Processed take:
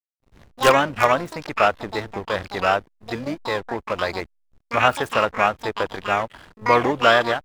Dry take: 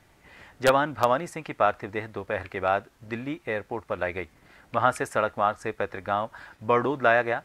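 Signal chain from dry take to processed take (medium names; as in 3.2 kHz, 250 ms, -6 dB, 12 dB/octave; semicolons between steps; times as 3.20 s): hysteresis with a dead band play -37 dBFS; harmony voices -7 st -18 dB, +12 st -5 dB; trim +4 dB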